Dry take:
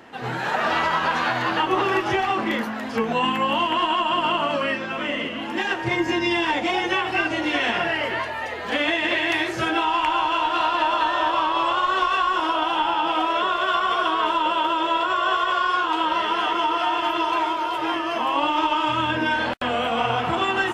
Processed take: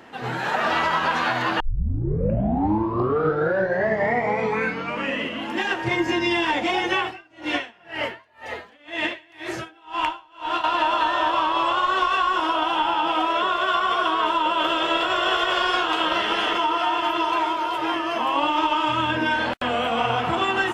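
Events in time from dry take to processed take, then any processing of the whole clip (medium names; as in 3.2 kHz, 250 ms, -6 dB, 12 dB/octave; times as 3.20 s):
1.60 s: tape start 3.72 s
7.03–10.64 s: logarithmic tremolo 2 Hz, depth 32 dB
14.59–16.57 s: spectral peaks clipped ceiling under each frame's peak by 13 dB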